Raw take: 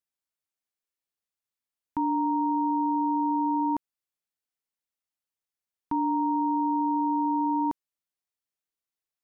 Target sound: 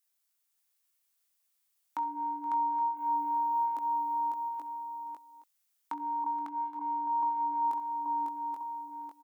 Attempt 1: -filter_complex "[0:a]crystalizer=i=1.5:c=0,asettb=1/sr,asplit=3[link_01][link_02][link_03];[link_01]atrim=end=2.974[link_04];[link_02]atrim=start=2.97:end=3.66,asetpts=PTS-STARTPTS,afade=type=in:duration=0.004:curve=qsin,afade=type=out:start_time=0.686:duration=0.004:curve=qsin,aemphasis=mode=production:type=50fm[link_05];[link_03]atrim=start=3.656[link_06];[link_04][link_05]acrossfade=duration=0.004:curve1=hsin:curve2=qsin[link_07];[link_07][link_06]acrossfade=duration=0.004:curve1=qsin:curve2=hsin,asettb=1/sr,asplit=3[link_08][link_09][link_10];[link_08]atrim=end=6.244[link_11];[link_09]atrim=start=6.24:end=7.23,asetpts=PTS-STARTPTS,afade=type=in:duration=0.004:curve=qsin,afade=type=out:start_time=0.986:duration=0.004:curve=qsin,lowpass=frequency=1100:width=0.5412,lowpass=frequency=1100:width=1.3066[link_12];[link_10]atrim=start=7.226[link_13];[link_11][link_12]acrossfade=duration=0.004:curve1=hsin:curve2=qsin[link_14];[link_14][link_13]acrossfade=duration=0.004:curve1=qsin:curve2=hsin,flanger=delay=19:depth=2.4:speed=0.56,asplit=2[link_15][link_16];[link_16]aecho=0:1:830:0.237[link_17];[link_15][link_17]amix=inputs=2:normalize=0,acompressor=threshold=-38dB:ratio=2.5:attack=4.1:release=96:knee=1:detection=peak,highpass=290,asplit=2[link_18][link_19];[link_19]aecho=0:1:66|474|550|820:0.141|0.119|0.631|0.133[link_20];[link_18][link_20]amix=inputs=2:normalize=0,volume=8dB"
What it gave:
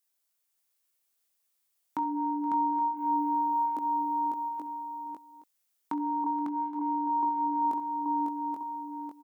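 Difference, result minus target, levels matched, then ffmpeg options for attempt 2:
250 Hz band +11.5 dB
-filter_complex "[0:a]crystalizer=i=1.5:c=0,asettb=1/sr,asplit=3[link_01][link_02][link_03];[link_01]atrim=end=2.974[link_04];[link_02]atrim=start=2.97:end=3.66,asetpts=PTS-STARTPTS,afade=type=in:duration=0.004:curve=qsin,afade=type=out:start_time=0.686:duration=0.004:curve=qsin,aemphasis=mode=production:type=50fm[link_05];[link_03]atrim=start=3.656[link_06];[link_04][link_05]acrossfade=duration=0.004:curve1=hsin:curve2=qsin[link_07];[link_07][link_06]acrossfade=duration=0.004:curve1=qsin:curve2=hsin,asettb=1/sr,asplit=3[link_08][link_09][link_10];[link_08]atrim=end=6.244[link_11];[link_09]atrim=start=6.24:end=7.23,asetpts=PTS-STARTPTS,afade=type=in:duration=0.004:curve=qsin,afade=type=out:start_time=0.986:duration=0.004:curve=qsin,lowpass=frequency=1100:width=0.5412,lowpass=frequency=1100:width=1.3066[link_12];[link_10]atrim=start=7.226[link_13];[link_11][link_12]acrossfade=duration=0.004:curve1=hsin:curve2=qsin[link_14];[link_14][link_13]acrossfade=duration=0.004:curve1=qsin:curve2=hsin,flanger=delay=19:depth=2.4:speed=0.56,asplit=2[link_15][link_16];[link_16]aecho=0:1:830:0.237[link_17];[link_15][link_17]amix=inputs=2:normalize=0,acompressor=threshold=-38dB:ratio=2.5:attack=4.1:release=96:knee=1:detection=peak,highpass=750,asplit=2[link_18][link_19];[link_19]aecho=0:1:66|474|550|820:0.141|0.119|0.631|0.133[link_20];[link_18][link_20]amix=inputs=2:normalize=0,volume=8dB"

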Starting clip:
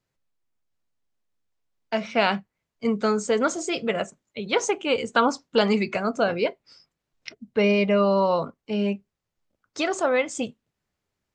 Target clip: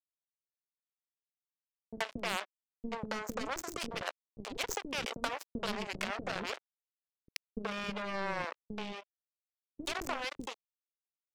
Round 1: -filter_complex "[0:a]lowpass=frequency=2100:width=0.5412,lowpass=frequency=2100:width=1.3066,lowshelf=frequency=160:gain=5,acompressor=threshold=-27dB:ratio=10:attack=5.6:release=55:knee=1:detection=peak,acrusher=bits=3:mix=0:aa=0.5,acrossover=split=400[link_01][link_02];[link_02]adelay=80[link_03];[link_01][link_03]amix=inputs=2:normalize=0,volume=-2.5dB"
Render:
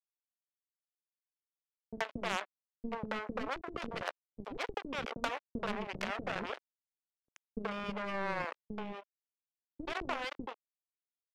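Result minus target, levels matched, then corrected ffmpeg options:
8,000 Hz band −10.0 dB
-filter_complex "[0:a]lowpass=frequency=8400:width=0.5412,lowpass=frequency=8400:width=1.3066,lowshelf=frequency=160:gain=5,acompressor=threshold=-27dB:ratio=10:attack=5.6:release=55:knee=1:detection=peak,acrusher=bits=3:mix=0:aa=0.5,acrossover=split=400[link_01][link_02];[link_02]adelay=80[link_03];[link_01][link_03]amix=inputs=2:normalize=0,volume=-2.5dB"

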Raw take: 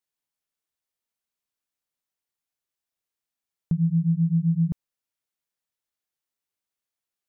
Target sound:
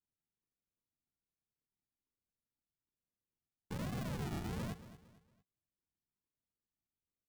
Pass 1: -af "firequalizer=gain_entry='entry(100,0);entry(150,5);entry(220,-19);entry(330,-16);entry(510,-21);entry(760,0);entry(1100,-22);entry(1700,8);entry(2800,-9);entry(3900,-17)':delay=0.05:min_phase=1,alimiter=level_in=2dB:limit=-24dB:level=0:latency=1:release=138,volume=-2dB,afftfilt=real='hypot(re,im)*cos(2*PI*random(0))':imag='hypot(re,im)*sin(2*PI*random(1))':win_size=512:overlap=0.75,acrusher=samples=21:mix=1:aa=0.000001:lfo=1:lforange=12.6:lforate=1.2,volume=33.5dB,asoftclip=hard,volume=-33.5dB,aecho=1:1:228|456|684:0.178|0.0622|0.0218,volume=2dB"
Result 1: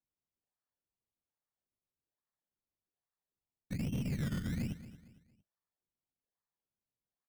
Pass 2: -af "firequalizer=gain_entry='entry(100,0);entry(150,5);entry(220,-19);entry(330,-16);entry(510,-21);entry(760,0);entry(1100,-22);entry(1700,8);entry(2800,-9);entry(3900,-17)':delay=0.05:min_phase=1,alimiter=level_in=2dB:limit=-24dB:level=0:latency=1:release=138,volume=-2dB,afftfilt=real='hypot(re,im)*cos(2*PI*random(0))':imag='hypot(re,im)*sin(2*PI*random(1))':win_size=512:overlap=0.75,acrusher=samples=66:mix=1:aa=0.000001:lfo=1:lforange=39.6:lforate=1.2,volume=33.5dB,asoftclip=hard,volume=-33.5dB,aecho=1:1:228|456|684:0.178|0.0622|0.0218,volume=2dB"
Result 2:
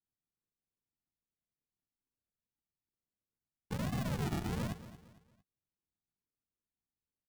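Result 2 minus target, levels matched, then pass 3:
gain into a clipping stage and back: distortion −6 dB
-af "firequalizer=gain_entry='entry(100,0);entry(150,5);entry(220,-19);entry(330,-16);entry(510,-21);entry(760,0);entry(1100,-22);entry(1700,8);entry(2800,-9);entry(3900,-17)':delay=0.05:min_phase=1,alimiter=level_in=2dB:limit=-24dB:level=0:latency=1:release=138,volume=-2dB,afftfilt=real='hypot(re,im)*cos(2*PI*random(0))':imag='hypot(re,im)*sin(2*PI*random(1))':win_size=512:overlap=0.75,acrusher=samples=66:mix=1:aa=0.000001:lfo=1:lforange=39.6:lforate=1.2,volume=40dB,asoftclip=hard,volume=-40dB,aecho=1:1:228|456|684:0.178|0.0622|0.0218,volume=2dB"

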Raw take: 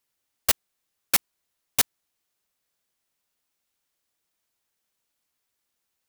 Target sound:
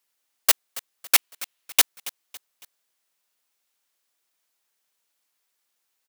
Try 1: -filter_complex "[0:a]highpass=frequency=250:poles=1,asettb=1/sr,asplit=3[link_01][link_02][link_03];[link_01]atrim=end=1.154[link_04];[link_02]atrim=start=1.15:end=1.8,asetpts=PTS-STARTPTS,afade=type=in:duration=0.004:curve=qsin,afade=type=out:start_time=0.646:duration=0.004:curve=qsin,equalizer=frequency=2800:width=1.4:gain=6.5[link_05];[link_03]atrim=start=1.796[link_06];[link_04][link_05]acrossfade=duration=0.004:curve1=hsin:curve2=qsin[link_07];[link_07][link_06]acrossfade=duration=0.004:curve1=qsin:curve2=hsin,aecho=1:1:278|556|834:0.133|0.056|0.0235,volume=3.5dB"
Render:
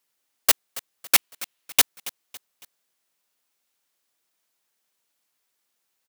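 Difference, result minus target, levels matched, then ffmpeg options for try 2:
250 Hz band +4.0 dB
-filter_complex "[0:a]highpass=frequency=520:poles=1,asettb=1/sr,asplit=3[link_01][link_02][link_03];[link_01]atrim=end=1.154[link_04];[link_02]atrim=start=1.15:end=1.8,asetpts=PTS-STARTPTS,afade=type=in:duration=0.004:curve=qsin,afade=type=out:start_time=0.646:duration=0.004:curve=qsin,equalizer=frequency=2800:width=1.4:gain=6.5[link_05];[link_03]atrim=start=1.796[link_06];[link_04][link_05]acrossfade=duration=0.004:curve1=hsin:curve2=qsin[link_07];[link_07][link_06]acrossfade=duration=0.004:curve1=qsin:curve2=hsin,aecho=1:1:278|556|834:0.133|0.056|0.0235,volume=3.5dB"

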